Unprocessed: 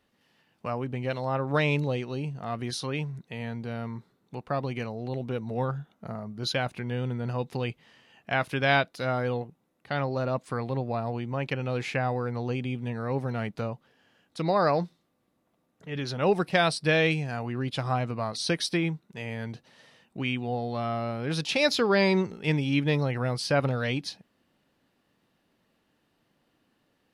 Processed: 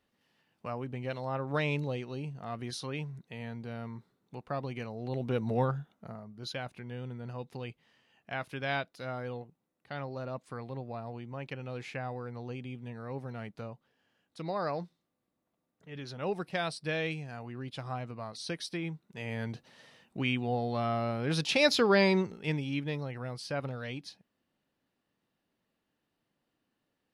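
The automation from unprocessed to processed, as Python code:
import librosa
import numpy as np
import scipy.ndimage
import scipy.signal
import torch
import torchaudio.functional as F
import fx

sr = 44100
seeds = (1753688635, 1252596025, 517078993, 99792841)

y = fx.gain(x, sr, db=fx.line((4.87, -6.0), (5.48, 2.5), (6.27, -10.0), (18.77, -10.0), (19.37, -1.0), (21.92, -1.0), (22.98, -10.5)))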